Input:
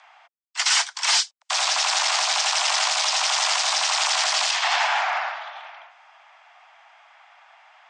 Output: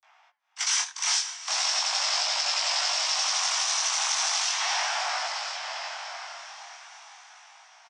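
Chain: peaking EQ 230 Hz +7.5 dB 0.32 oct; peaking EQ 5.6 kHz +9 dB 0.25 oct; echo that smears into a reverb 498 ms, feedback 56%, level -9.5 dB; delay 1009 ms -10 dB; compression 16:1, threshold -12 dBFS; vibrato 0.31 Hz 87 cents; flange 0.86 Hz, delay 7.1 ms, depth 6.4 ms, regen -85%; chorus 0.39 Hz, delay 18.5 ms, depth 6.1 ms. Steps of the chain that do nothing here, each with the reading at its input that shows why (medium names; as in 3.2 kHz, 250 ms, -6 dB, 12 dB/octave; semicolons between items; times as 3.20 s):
peaking EQ 230 Hz: input has nothing below 510 Hz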